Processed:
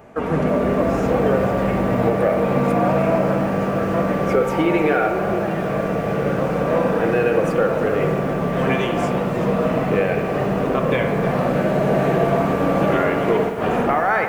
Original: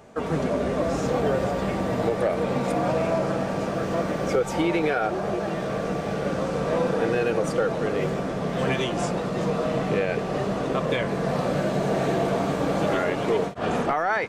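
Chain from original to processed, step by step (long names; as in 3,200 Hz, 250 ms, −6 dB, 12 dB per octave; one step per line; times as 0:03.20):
flat-topped bell 5,600 Hz −9 dB
on a send at −6 dB: convolution reverb RT60 1.0 s, pre-delay 57 ms
on the sum: feedback echo at a low word length 312 ms, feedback 55%, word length 7 bits, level −14 dB
level +4.5 dB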